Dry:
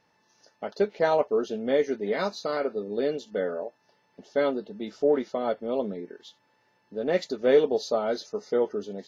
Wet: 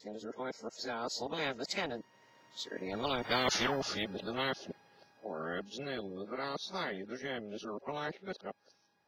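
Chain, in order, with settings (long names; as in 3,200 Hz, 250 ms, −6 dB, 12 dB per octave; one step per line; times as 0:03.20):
played backwards from end to start
source passing by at 0:03.49, 23 m/s, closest 3.2 metres
every bin compressed towards the loudest bin 4 to 1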